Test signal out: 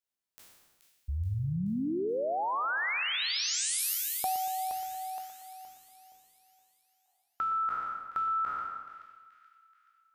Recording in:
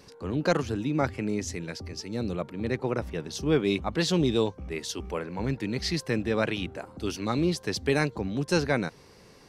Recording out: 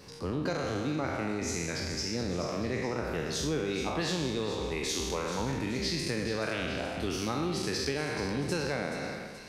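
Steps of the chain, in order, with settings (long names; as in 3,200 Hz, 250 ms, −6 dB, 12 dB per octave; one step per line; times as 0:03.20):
peak hold with a decay on every bin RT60 1.25 s
downward compressor, threshold −29 dBFS
echo with a time of its own for lows and highs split 1,800 Hz, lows 117 ms, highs 428 ms, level −10 dB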